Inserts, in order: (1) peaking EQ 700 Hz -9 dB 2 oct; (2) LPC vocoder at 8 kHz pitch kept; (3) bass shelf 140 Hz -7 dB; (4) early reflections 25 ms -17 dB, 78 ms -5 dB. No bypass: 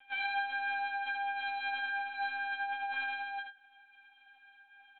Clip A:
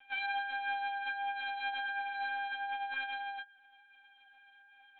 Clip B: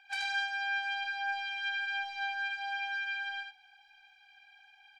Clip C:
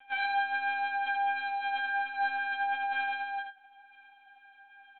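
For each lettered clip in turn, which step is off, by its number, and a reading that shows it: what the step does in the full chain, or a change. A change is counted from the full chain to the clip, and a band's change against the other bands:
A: 4, loudness change -1.5 LU; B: 2, loudness change +1.0 LU; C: 1, loudness change +4.0 LU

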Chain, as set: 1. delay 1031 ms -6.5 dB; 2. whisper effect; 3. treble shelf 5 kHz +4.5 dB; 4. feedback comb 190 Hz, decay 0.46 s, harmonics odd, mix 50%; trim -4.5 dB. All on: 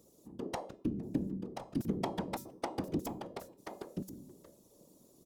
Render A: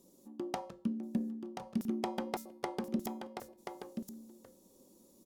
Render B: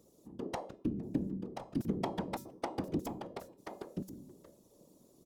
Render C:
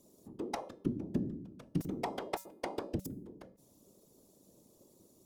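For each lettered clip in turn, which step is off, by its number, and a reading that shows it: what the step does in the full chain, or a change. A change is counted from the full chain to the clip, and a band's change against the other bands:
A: 2, 125 Hz band -6.5 dB; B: 3, 8 kHz band -3.0 dB; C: 1, momentary loudness spread change +2 LU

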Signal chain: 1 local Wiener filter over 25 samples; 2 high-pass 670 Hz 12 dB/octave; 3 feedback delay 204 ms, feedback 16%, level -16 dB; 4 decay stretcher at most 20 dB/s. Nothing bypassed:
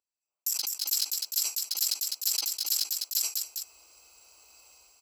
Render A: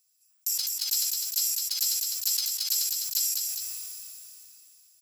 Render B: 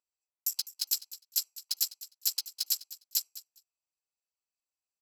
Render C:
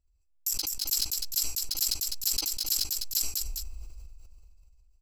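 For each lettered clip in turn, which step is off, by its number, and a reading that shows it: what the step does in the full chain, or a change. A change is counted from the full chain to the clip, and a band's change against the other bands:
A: 1, crest factor change -2.0 dB; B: 4, crest factor change +4.5 dB; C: 2, momentary loudness spread change +2 LU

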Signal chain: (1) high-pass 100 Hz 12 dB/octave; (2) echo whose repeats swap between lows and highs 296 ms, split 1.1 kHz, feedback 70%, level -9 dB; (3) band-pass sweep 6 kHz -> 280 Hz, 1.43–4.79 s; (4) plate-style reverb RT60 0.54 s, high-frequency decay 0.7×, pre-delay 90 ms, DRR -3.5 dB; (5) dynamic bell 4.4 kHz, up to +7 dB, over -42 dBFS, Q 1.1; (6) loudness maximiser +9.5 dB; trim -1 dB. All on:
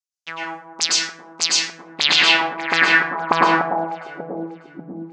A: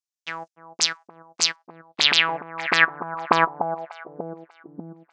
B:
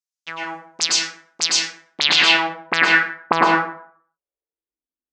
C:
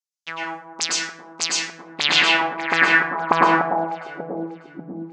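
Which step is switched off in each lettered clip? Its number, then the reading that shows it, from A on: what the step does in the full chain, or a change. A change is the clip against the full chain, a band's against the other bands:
4, momentary loudness spread change +2 LU; 2, momentary loudness spread change -1 LU; 5, loudness change -2.0 LU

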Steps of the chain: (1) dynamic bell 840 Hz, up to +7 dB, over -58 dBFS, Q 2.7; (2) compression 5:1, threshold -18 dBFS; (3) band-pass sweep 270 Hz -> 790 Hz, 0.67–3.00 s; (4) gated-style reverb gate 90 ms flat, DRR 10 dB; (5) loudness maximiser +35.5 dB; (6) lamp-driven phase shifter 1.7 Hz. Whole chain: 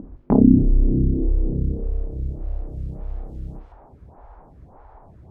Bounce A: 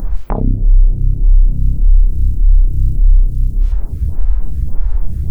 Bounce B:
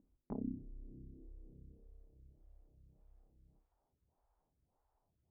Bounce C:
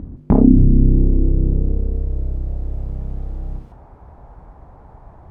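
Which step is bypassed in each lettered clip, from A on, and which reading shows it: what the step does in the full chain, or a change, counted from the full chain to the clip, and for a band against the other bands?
3, crest factor change -11.0 dB; 5, crest factor change +4.5 dB; 6, 125 Hz band +3.0 dB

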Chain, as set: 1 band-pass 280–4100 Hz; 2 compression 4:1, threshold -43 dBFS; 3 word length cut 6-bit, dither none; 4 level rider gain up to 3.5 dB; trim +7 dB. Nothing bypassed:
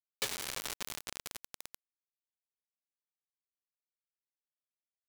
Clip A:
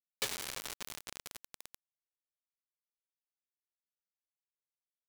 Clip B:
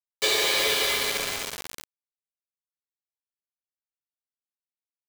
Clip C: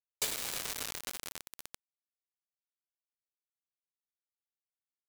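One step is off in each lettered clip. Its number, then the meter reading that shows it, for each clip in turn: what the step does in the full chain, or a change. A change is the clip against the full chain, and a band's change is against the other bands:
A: 4, crest factor change -2.0 dB; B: 2, crest factor change -7.0 dB; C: 1, 8 kHz band +3.0 dB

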